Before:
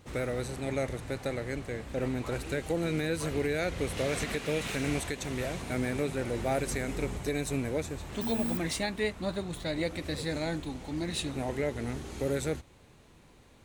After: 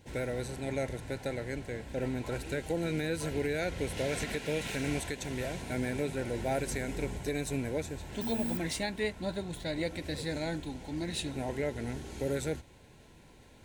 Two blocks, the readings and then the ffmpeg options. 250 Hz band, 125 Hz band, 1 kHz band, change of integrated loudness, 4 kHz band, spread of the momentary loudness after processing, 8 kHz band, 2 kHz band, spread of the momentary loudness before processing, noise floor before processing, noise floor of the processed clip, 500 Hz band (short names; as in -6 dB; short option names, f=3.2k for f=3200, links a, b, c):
-2.0 dB, -2.0 dB, -2.5 dB, -2.0 dB, -2.0 dB, 5 LU, -2.0 dB, -2.0 dB, 5 LU, -57 dBFS, -56 dBFS, -2.0 dB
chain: -af "areverse,acompressor=mode=upward:threshold=-48dB:ratio=2.5,areverse,asuperstop=centerf=1200:order=20:qfactor=6,volume=-2dB"